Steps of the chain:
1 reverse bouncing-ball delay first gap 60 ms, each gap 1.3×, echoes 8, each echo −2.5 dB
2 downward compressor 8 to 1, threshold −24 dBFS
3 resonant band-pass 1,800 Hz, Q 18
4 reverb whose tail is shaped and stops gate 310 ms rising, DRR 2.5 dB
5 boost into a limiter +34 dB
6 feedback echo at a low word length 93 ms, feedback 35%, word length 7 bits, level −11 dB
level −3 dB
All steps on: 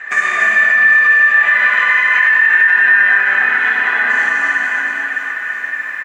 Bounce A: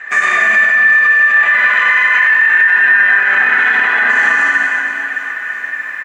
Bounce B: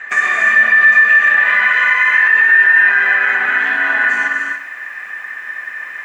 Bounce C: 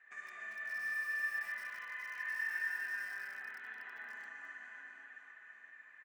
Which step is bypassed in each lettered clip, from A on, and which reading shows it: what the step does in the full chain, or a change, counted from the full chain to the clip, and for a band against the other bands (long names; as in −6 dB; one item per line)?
2, average gain reduction 6.0 dB
1, change in momentary loudness spread +7 LU
5, change in crest factor +4.0 dB